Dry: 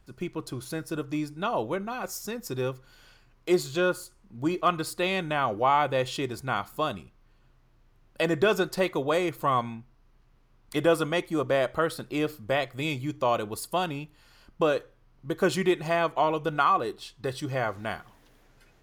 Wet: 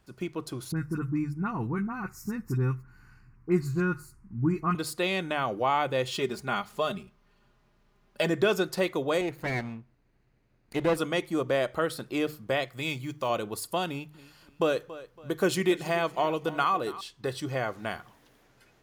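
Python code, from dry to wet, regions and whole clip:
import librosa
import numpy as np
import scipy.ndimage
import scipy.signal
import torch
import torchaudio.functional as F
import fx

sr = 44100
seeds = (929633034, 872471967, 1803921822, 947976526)

y = fx.chain(x, sr, fx.bass_treble(bass_db=13, treble_db=-9),
    fx.fixed_phaser(hz=1400.0, stages=4),
    fx.dispersion(late='highs', ms=49.0, hz=1900.0), at=(0.72, 4.75))
y = fx.chain(y, sr, fx.median_filter(points=3),
    fx.comb(ms=4.9, depth=0.64), at=(6.11, 8.3))
y = fx.chain(y, sr, fx.lower_of_two(delay_ms=0.46),
    fx.high_shelf(hz=2700.0, db=-8.0), at=(9.21, 10.97))
y = fx.chain(y, sr, fx.block_float(bits=7),
    fx.highpass(hz=41.0, slope=12),
    fx.peak_eq(hz=370.0, db=-4.5, octaves=2.1), at=(12.68, 13.3))
y = fx.chain(y, sr, fx.high_shelf(hz=9000.0, db=5.5),
    fx.echo_feedback(ms=280, feedback_pct=35, wet_db=-18.0), at=(13.86, 17.01))
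y = fx.highpass(y, sr, hz=86.0, slope=6)
y = fx.hum_notches(y, sr, base_hz=50, count=3)
y = fx.dynamic_eq(y, sr, hz=1000.0, q=0.93, threshold_db=-33.0, ratio=4.0, max_db=-4)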